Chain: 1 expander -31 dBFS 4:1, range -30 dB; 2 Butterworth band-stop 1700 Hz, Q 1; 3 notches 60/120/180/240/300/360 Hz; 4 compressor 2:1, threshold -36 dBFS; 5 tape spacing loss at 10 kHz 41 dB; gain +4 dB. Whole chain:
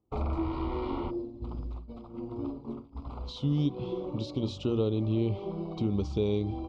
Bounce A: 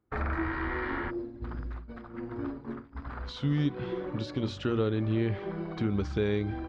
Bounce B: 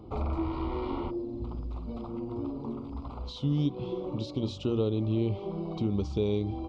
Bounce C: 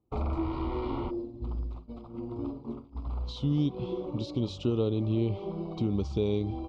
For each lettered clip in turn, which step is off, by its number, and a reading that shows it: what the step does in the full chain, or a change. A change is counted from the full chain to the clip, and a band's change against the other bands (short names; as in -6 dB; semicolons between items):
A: 2, 2 kHz band +16.5 dB; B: 1, momentary loudness spread change -3 LU; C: 3, momentary loudness spread change -1 LU